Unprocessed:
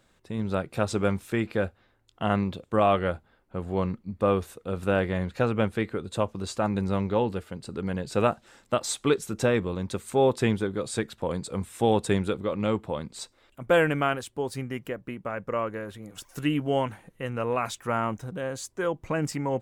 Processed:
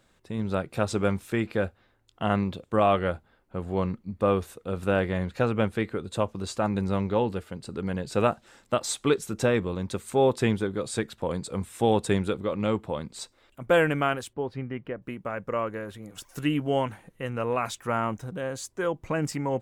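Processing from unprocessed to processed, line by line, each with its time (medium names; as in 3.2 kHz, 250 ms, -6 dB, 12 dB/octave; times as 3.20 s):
14.33–15.02 s: distance through air 340 m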